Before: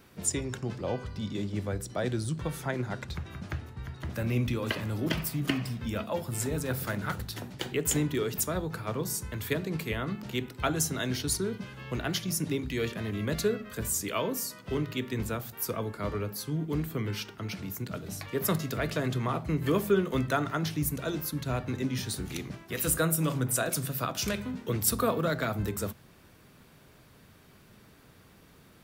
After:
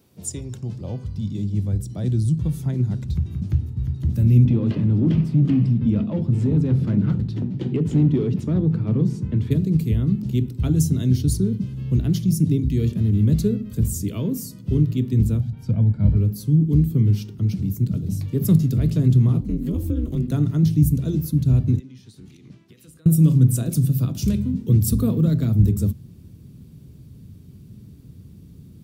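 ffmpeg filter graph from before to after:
ffmpeg -i in.wav -filter_complex "[0:a]asettb=1/sr,asplit=3[link_01][link_02][link_03];[link_01]atrim=end=4.454[link_04];[link_02]atrim=start=4.45:end=9.51,asetpts=PTS-STARTPTS,afade=type=in:duration=0.004:curve=qsin,afade=type=out:start_time=5.056:duration=0.004:curve=qsin,acontrast=55,asoftclip=type=hard:threshold=-22.5dB,highpass=160,lowpass=2400[link_05];[link_03]atrim=start=9.506[link_06];[link_04][link_05]acrossfade=duration=0.004:curve1=hsin:curve2=qsin[link_07];[link_07][link_06]acrossfade=duration=0.004:curve1=qsin:curve2=hsin,asettb=1/sr,asplit=3[link_08][link_09][link_10];[link_08]atrim=end=15.404[link_11];[link_09]atrim=start=15.4:end=16.17,asetpts=PTS-STARTPTS,afade=type=in:duration=0.004:curve=qsin,afade=type=out:start_time=0.766:duration=0.004:curve=qsin,lowpass=2800,aecho=1:1:1.3:0.74,atrim=end_sample=33957[link_12];[link_10]atrim=start=16.166[link_13];[link_11][link_12]acrossfade=duration=0.004:curve1=hsin:curve2=qsin[link_14];[link_14][link_13]acrossfade=duration=0.004:curve1=qsin:curve2=hsin,asettb=1/sr,asplit=3[link_15][link_16][link_17];[link_15]atrim=end=19.404[link_18];[link_16]atrim=start=19.4:end=20.32,asetpts=PTS-STARTPTS,afade=type=in:duration=0.004:curve=qsin,afade=type=out:start_time=0.916:duration=0.004:curve=qsin,acompressor=threshold=-26dB:ratio=4:attack=3.2:release=140:knee=1:detection=peak,aeval=exprs='val(0)*sin(2*PI*120*n/s)':channel_layout=same[link_19];[link_17]atrim=start=20.316[link_20];[link_18][link_19]acrossfade=duration=0.004:curve1=hsin:curve2=qsin[link_21];[link_21][link_20]acrossfade=duration=0.004:curve1=qsin:curve2=hsin,asettb=1/sr,asplit=3[link_22][link_23][link_24];[link_22]atrim=end=21.794[link_25];[link_23]atrim=start=21.79:end=23.06,asetpts=PTS-STARTPTS,afade=type=in:duration=0.004:curve=qsin,afade=type=out:start_time=1.266:duration=0.004:curve=qsin,bandpass=frequency=1900:width_type=q:width=0.66,acompressor=threshold=-46dB:ratio=10:attack=3.2:release=140:knee=1:detection=peak[link_26];[link_24]atrim=start=23.056[link_27];[link_25][link_26]acrossfade=duration=0.004:curve1=hsin:curve2=qsin[link_28];[link_28][link_27]acrossfade=duration=0.004:curve1=qsin:curve2=hsin,asubboost=boost=11.5:cutoff=200,highpass=69,equalizer=frequency=1600:width_type=o:width=1.7:gain=-13.5" out.wav

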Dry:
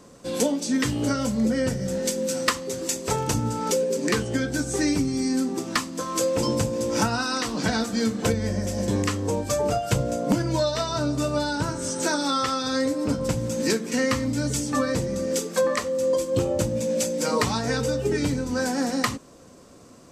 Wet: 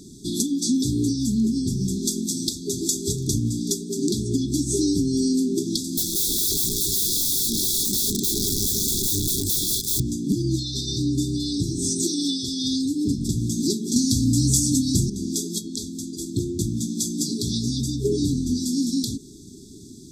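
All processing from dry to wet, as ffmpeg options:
ffmpeg -i in.wav -filter_complex "[0:a]asettb=1/sr,asplit=3[link_01][link_02][link_03];[link_01]atrim=end=5.844[link_04];[link_02]atrim=start=5.84:end=10,asetpts=PTS-STARTPTS,afade=type=in:duration=0.004:curve=qsin,afade=type=out:start_time=4.156:duration=0.004:curve=qsin,aemphasis=mode=production:type=50kf,aeval=exprs='(mod(14.1*val(0)+1,2)-1)/14.1':channel_layout=same[link_05];[link_03]atrim=start=9.996[link_06];[link_04][link_05]acrossfade=duration=0.004:curve1=hsin:curve2=qsin[link_07];[link_07][link_06]acrossfade=duration=0.004:curve1=qsin:curve2=hsin,asettb=1/sr,asplit=3[link_08][link_09][link_10];[link_08]atrim=end=13.964[link_11];[link_09]atrim=start=13.96:end=15.1,asetpts=PTS-STARTPTS,afade=type=in:duration=0.004:curve=qsin,afade=type=out:start_time=1.136:duration=0.004:curve=qsin,acontrast=66,bass=frequency=250:gain=7,treble=frequency=4000:gain=10[link_12];[link_10]atrim=start=15.096[link_13];[link_11][link_12]acrossfade=duration=0.004:curve1=hsin:curve2=qsin[link_14];[link_14][link_13]acrossfade=duration=0.004:curve1=qsin:curve2=hsin,acompressor=threshold=-27dB:ratio=4,afftfilt=real='re*(1-between(b*sr/4096,430,3300))':imag='im*(1-between(b*sr/4096,430,3300))':win_size=4096:overlap=0.75,volume=8dB" out.wav

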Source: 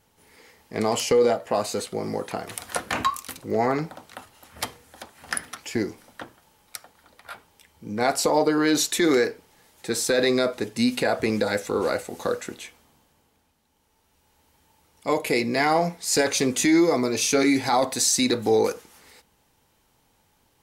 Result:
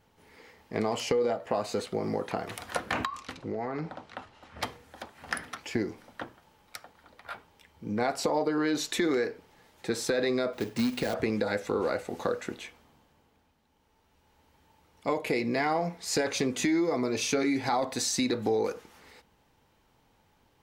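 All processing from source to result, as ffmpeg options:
ffmpeg -i in.wav -filter_complex "[0:a]asettb=1/sr,asplit=3[link_01][link_02][link_03];[link_01]atrim=end=3.054[link_04];[link_02]atrim=start=3.05:end=4.63,asetpts=PTS-STARTPTS,afade=type=in:duration=0.004:curve=qsin,afade=type=out:start_time=1.576:duration=0.004:curve=qsin,lowpass=6000,acompressor=threshold=-29dB:ratio=6:attack=3.2:release=140:knee=1:detection=peak[link_05];[link_03]atrim=start=4.626[link_06];[link_04][link_05]acrossfade=duration=0.004:curve1=hsin:curve2=qsin[link_07];[link_07][link_06]acrossfade=duration=0.004:curve1=qsin:curve2=hsin,asettb=1/sr,asplit=3[link_08][link_09][link_10];[link_08]atrim=end=10.534[link_11];[link_09]atrim=start=10.53:end=11.14,asetpts=PTS-STARTPTS,afade=type=in:duration=0.004:curve=qsin,afade=type=out:start_time=0.606:duration=0.004:curve=qsin,acrusher=bits=2:mode=log:mix=0:aa=0.000001,acrossover=split=410|3000[link_12][link_13][link_14];[link_13]acompressor=threshold=-36dB:ratio=2:attack=3.2:release=140:knee=2.83:detection=peak[link_15];[link_12][link_15][link_14]amix=inputs=3:normalize=0[link_16];[link_10]atrim=start=11.136[link_17];[link_11][link_16]acrossfade=duration=0.004:curve1=hsin:curve2=qsin[link_18];[link_18][link_17]acrossfade=duration=0.004:curve1=qsin:curve2=hsin,equalizer=frequency=11000:width_type=o:width=1.7:gain=-12,acompressor=threshold=-26dB:ratio=3" out.wav

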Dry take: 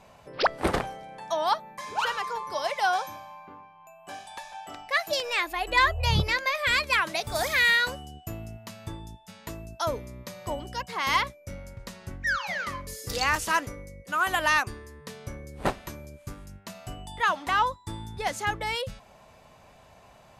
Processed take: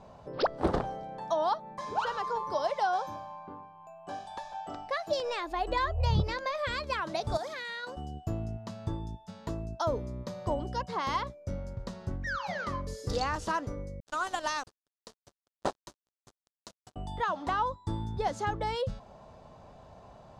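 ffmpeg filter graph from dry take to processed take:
ffmpeg -i in.wav -filter_complex "[0:a]asettb=1/sr,asplit=3[link_01][link_02][link_03];[link_01]atrim=end=7.374[link_04];[link_02]atrim=start=7.37:end=7.97,asetpts=PTS-STARTPTS,afade=type=in:duration=0.004:curve=qsin,afade=type=out:start_time=0.596:duration=0.004:curve=qsin,highpass=270,agate=range=-7dB:threshold=-24dB:ratio=16:release=100:detection=peak,acompressor=threshold=-32dB:ratio=2.5:attack=3.2:release=140:knee=1:detection=peak[link_05];[link_03]atrim=start=7.966[link_06];[link_04][link_05]acrossfade=duration=0.004:curve1=hsin:curve2=qsin[link_07];[link_07][link_06]acrossfade=duration=0.004:curve1=qsin:curve2=hsin,asettb=1/sr,asplit=3[link_08][link_09][link_10];[link_08]atrim=end=14.004[link_11];[link_09]atrim=start=14:end=16.96,asetpts=PTS-STARTPTS,afade=type=in:duration=0.004:curve=qsin,afade=type=out:start_time=2.956:duration=0.004:curve=qsin,lowpass=frequency=10000:width=0.5412,lowpass=frequency=10000:width=1.3066,bass=frequency=250:gain=-13,treble=frequency=4000:gain=13,aeval=exprs='sgn(val(0))*max(abs(val(0))-0.0211,0)':channel_layout=same[link_12];[link_10]atrim=start=16.956[link_13];[link_11][link_12]acrossfade=duration=0.004:curve1=hsin:curve2=qsin[link_14];[link_14][link_13]acrossfade=duration=0.004:curve1=qsin:curve2=hsin,acompressor=threshold=-28dB:ratio=2.5,lowpass=4000,equalizer=frequency=2300:width_type=o:width=1.3:gain=-14.5,volume=4dB" out.wav

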